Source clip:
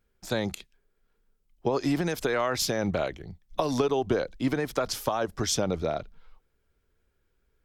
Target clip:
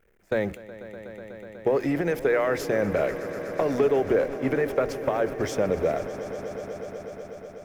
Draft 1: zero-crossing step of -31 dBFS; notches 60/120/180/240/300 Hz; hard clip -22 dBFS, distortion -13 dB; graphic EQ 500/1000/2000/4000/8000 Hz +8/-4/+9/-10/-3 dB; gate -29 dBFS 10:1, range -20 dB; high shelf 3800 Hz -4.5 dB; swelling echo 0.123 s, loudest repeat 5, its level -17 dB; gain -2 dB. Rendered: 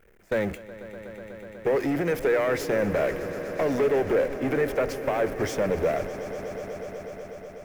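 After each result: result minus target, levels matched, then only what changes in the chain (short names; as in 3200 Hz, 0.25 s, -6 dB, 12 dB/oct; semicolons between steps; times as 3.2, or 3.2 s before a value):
hard clip: distortion +17 dB; zero-crossing step: distortion +6 dB
change: hard clip -15 dBFS, distortion -30 dB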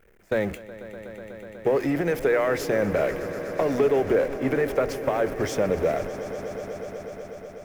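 zero-crossing step: distortion +6 dB
change: zero-crossing step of -37.5 dBFS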